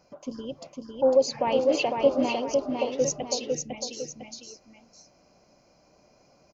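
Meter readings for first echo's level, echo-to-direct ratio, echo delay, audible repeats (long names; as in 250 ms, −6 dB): −4.0 dB, −3.5 dB, 503 ms, 2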